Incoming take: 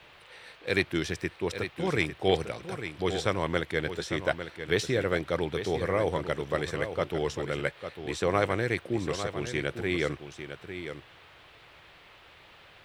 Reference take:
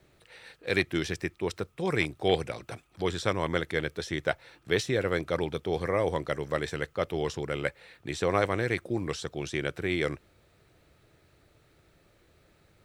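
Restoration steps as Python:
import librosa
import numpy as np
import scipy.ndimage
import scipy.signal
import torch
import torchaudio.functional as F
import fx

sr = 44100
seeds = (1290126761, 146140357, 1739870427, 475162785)

y = fx.noise_reduce(x, sr, print_start_s=11.98, print_end_s=12.48, reduce_db=9.0)
y = fx.fix_echo_inverse(y, sr, delay_ms=851, level_db=-9.5)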